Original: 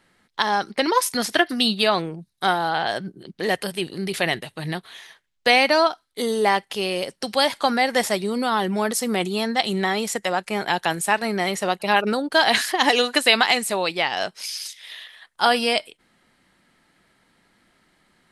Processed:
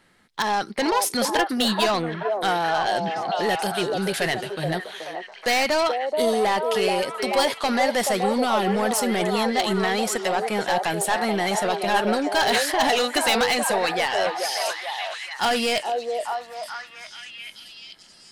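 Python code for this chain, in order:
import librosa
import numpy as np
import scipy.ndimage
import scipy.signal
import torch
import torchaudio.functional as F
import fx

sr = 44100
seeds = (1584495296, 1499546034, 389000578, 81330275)

y = 10.0 ** (-19.0 / 20.0) * np.tanh(x / 10.0 ** (-19.0 / 20.0))
y = fx.echo_stepped(y, sr, ms=429, hz=560.0, octaves=0.7, feedback_pct=70, wet_db=-0.5)
y = y * 10.0 ** (2.0 / 20.0)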